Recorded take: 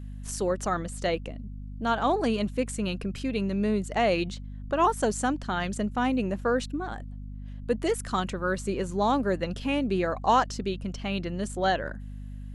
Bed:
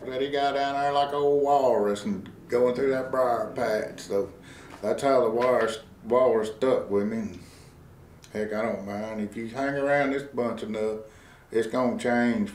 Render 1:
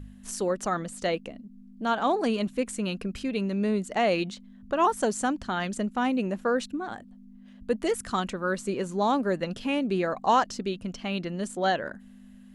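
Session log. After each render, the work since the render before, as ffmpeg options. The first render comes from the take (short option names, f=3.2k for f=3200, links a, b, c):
-af "bandreject=f=50:t=h:w=4,bandreject=f=100:t=h:w=4,bandreject=f=150:t=h:w=4"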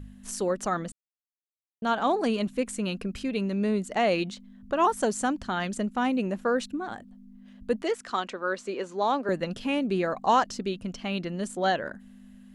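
-filter_complex "[0:a]asettb=1/sr,asplit=3[a][b][c];[a]atrim=end=7.824[d];[b]atrim=start=7.82:end=9.29,asetpts=PTS-STARTPTS,afade=t=in:d=0.004:c=qsin,afade=t=out:st=1.466:d=0.004:c=qsin,acrossover=split=280 6900:gain=0.1 1 0.112[e][f][g];[e][f][g]amix=inputs=3:normalize=0[h];[c]atrim=start=9.286[i];[d][h]acrossfade=d=0.004:c1=hsin:c2=qsin[j];[j][i]acrossfade=d=0.004:c1=qsin:c2=hsin,asplit=3[k][l][m];[k]atrim=end=0.92,asetpts=PTS-STARTPTS,afade=t=out:st=0.916:d=0.004:c=hsin[n];[l]atrim=start=0.92:end=1.82,asetpts=PTS-STARTPTS,volume=0[o];[m]atrim=start=1.82,asetpts=PTS-STARTPTS,afade=t=in:d=0.004:c=hsin[p];[n][o][p]concat=n=3:v=0:a=1"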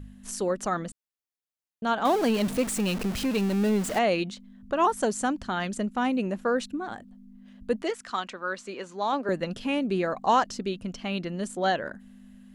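-filter_complex "[0:a]asettb=1/sr,asplit=3[a][b][c];[a]atrim=end=2.054[d];[b]atrim=start=2.05:end=3.99,asetpts=PTS-STARTPTS,afade=t=in:d=0.004:c=qsin,afade=t=out:st=1.936:d=0.004:c=qsin,aeval=exprs='val(0)+0.5*0.0355*sgn(val(0))':c=same[e];[c]atrim=start=3.986[f];[d][e]acrossfade=d=0.004:c1=hsin:c2=qsin[g];[g][f]acrossfade=d=0.004:c1=qsin:c2=hsin,asettb=1/sr,asplit=3[h][i][j];[h]atrim=end=7.904[k];[i]atrim=start=7.9:end=9.13,asetpts=PTS-STARTPTS,afade=t=in:d=0.004:c=qsin,afade=t=out:st=1.226:d=0.004:c=qsin,equalizer=f=420:t=o:w=1.4:g=-6[l];[j]atrim=start=9.126[m];[k][l]acrossfade=d=0.004:c1=hsin:c2=qsin[n];[n][m]acrossfade=d=0.004:c1=qsin:c2=hsin"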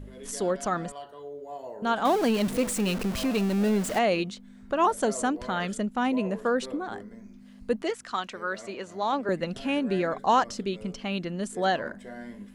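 -filter_complex "[1:a]volume=-18dB[a];[0:a][a]amix=inputs=2:normalize=0"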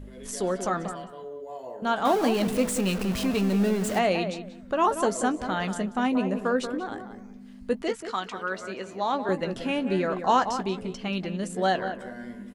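-filter_complex "[0:a]asplit=2[a][b];[b]adelay=16,volume=-11.5dB[c];[a][c]amix=inputs=2:normalize=0,asplit=2[d][e];[e]adelay=184,lowpass=f=1.9k:p=1,volume=-8.5dB,asplit=2[f][g];[g]adelay=184,lowpass=f=1.9k:p=1,volume=0.23,asplit=2[h][i];[i]adelay=184,lowpass=f=1.9k:p=1,volume=0.23[j];[f][h][j]amix=inputs=3:normalize=0[k];[d][k]amix=inputs=2:normalize=0"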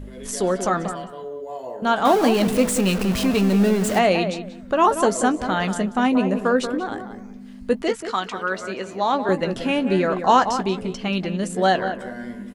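-af "volume=6dB"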